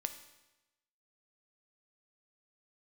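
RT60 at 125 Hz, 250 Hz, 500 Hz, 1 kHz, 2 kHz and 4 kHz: 1.0, 1.0, 1.0, 1.0, 1.0, 0.95 s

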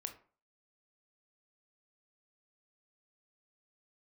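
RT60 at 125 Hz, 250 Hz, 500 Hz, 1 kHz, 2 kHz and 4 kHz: 0.35, 0.40, 0.40, 0.40, 0.35, 0.25 s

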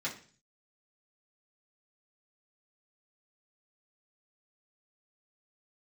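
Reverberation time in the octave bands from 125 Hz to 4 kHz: 0.75, 0.55, 0.45, 0.40, 0.45, 0.50 s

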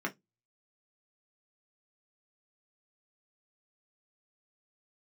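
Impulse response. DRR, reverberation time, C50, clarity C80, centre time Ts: -0.5 dB, 0.15 s, 22.0 dB, 35.5 dB, 9 ms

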